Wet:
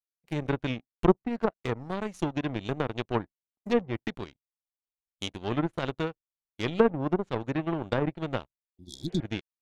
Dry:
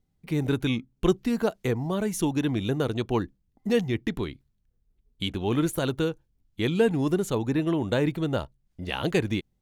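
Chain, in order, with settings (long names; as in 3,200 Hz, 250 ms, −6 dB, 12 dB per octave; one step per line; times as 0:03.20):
power curve on the samples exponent 2
healed spectral selection 0:08.81–0:09.19, 370–3,300 Hz both
treble cut that deepens with the level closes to 1,200 Hz, closed at −27.5 dBFS
level +6 dB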